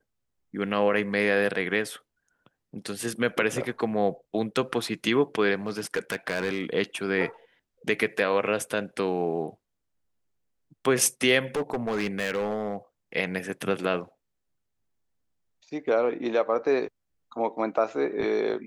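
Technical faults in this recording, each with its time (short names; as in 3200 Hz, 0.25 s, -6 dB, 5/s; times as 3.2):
5.66–6.62 clipped -22 dBFS
11.55–12.76 clipped -23 dBFS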